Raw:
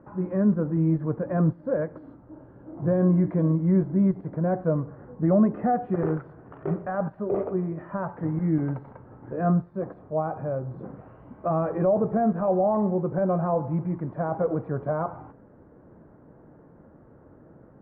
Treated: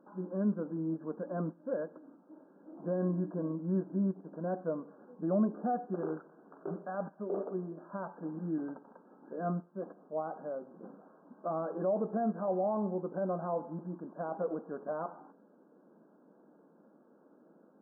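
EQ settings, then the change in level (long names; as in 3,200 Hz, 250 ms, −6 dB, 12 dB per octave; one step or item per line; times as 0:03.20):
linear-phase brick-wall band-pass 170–1,700 Hz
−9.0 dB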